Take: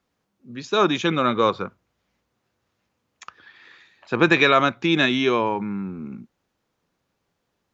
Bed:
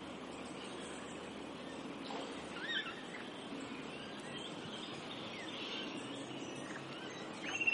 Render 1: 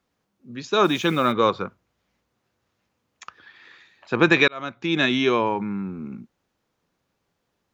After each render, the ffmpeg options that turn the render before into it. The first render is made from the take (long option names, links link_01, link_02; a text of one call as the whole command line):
ffmpeg -i in.wav -filter_complex "[0:a]asplit=3[link_01][link_02][link_03];[link_01]afade=type=out:start_time=0.83:duration=0.02[link_04];[link_02]acrusher=bits=6:mix=0:aa=0.5,afade=type=in:start_time=0.83:duration=0.02,afade=type=out:start_time=1.31:duration=0.02[link_05];[link_03]afade=type=in:start_time=1.31:duration=0.02[link_06];[link_04][link_05][link_06]amix=inputs=3:normalize=0,asplit=2[link_07][link_08];[link_07]atrim=end=4.48,asetpts=PTS-STARTPTS,afade=type=out:start_time=4.476:duration=0.004:curve=hsin[link_09];[link_08]atrim=start=4.48,asetpts=PTS-STARTPTS,afade=type=in:duration=0.65[link_10];[link_09][link_10]concat=n=2:v=0:a=1" out.wav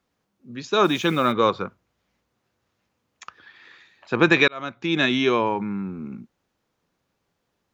ffmpeg -i in.wav -af anull out.wav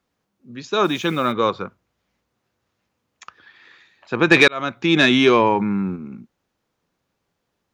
ffmpeg -i in.wav -filter_complex "[0:a]asplit=3[link_01][link_02][link_03];[link_01]afade=type=out:start_time=4.3:duration=0.02[link_04];[link_02]acontrast=75,afade=type=in:start_time=4.3:duration=0.02,afade=type=out:start_time=5.95:duration=0.02[link_05];[link_03]afade=type=in:start_time=5.95:duration=0.02[link_06];[link_04][link_05][link_06]amix=inputs=3:normalize=0" out.wav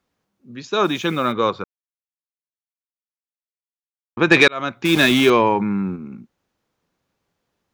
ffmpeg -i in.wav -filter_complex "[0:a]asettb=1/sr,asplit=3[link_01][link_02][link_03];[link_01]atrim=end=4.854[link_04];[link_02]atrim=start=4.85:end=5.3,asetpts=PTS-STARTPTS,afade=type=in:duration=0.004:curve=qsin,afade=type=out:start_time=0.446:duration=0.004:curve=qsin,aeval=exprs='val(0)*gte(abs(val(0)),0.0794)':channel_layout=same[link_05];[link_03]atrim=start=5.296[link_06];[link_04][link_05]acrossfade=duration=0.004:curve1=hsin:curve2=qsin[link_07];[link_07][link_06]acrossfade=duration=0.004:curve1=qsin:curve2=hsin,asplit=3[link_08][link_09][link_10];[link_08]atrim=end=1.64,asetpts=PTS-STARTPTS,afade=type=out:start_time=1.636:duration=0.004:curve=hsin[link_11];[link_09]atrim=start=1.64:end=4.17,asetpts=PTS-STARTPTS,volume=0[link_12];[link_10]atrim=start=4.17,asetpts=PTS-STARTPTS,afade=type=in:duration=0.004:curve=hsin[link_13];[link_11][link_12][link_13]concat=n=3:v=0:a=1" out.wav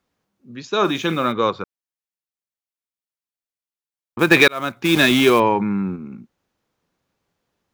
ffmpeg -i in.wav -filter_complex "[0:a]asettb=1/sr,asplit=3[link_01][link_02][link_03];[link_01]atrim=end=0.764[link_04];[link_02]atrim=start=0.76:end=1.27,asetpts=PTS-STARTPTS,afade=type=in:duration=0.004:curve=qsin,afade=type=out:start_time=0.506:duration=0.004:curve=qsin,asplit=2[link_05][link_06];[link_06]adelay=43,volume=-13dB[link_07];[link_05][link_07]amix=inputs=2:normalize=0,atrim=end_sample=22491[link_08];[link_03]atrim=start=1.266[link_09];[link_04][link_08]acrossfade=duration=0.004:curve1=hsin:curve2=qsin[link_10];[link_10][link_09]acrossfade=duration=0.004:curve1=qsin:curve2=hsin,asettb=1/sr,asplit=3[link_11][link_12][link_13];[link_11]atrim=end=4.194[link_14];[link_12]atrim=start=4.19:end=5.4,asetpts=PTS-STARTPTS,afade=type=in:duration=0.004:curve=qsin,afade=type=out:start_time=1.206:duration=0.004:curve=qsin,acrusher=bits=5:mode=log:mix=0:aa=0.000001[link_15];[link_13]atrim=start=5.396[link_16];[link_14][link_15]acrossfade=duration=0.004:curve1=hsin:curve2=qsin[link_17];[link_17][link_16]acrossfade=duration=0.004:curve1=qsin:curve2=hsin" out.wav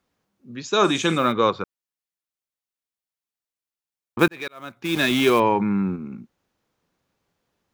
ffmpeg -i in.wav -filter_complex "[0:a]asettb=1/sr,asplit=3[link_01][link_02][link_03];[link_01]atrim=end=0.654[link_04];[link_02]atrim=start=0.65:end=1.18,asetpts=PTS-STARTPTS,afade=type=in:duration=0.004:curve=qsin,afade=type=out:start_time=0.526:duration=0.004:curve=qsin,lowpass=frequency=8000:width_type=q:width=5.6[link_05];[link_03]atrim=start=1.176[link_06];[link_04][link_05]acrossfade=duration=0.004:curve1=hsin:curve2=qsin[link_07];[link_07][link_06]acrossfade=duration=0.004:curve1=qsin:curve2=hsin,asplit=2[link_08][link_09];[link_08]atrim=end=4.28,asetpts=PTS-STARTPTS,afade=type=out:start_time=4.276:duration=0.004:curve=hsin[link_10];[link_09]atrim=start=4.28,asetpts=PTS-STARTPTS,afade=type=in:duration=1.52[link_11];[link_10][link_11]concat=n=2:v=0:a=1" out.wav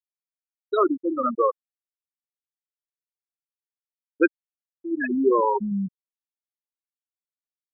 ffmpeg -i in.wav -af "highpass=frequency=200:width=0.5412,highpass=frequency=200:width=1.3066,afftfilt=real='re*gte(hypot(re,im),0.501)':imag='im*gte(hypot(re,im),0.501)':win_size=1024:overlap=0.75" out.wav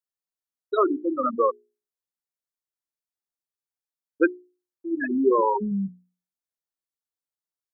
ffmpeg -i in.wav -af "equalizer=frequency=2600:width_type=o:width=0.57:gain=-9.5,bandreject=frequency=60:width_type=h:width=6,bandreject=frequency=120:width_type=h:width=6,bandreject=frequency=180:width_type=h:width=6,bandreject=frequency=240:width_type=h:width=6,bandreject=frequency=300:width_type=h:width=6,bandreject=frequency=360:width_type=h:width=6,bandreject=frequency=420:width_type=h:width=6" out.wav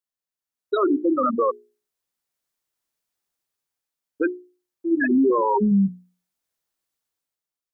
ffmpeg -i in.wav -af "dynaudnorm=framelen=120:gausssize=11:maxgain=11dB,alimiter=limit=-13dB:level=0:latency=1:release=19" out.wav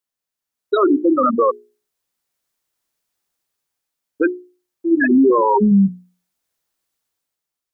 ffmpeg -i in.wav -af "volume=5.5dB" out.wav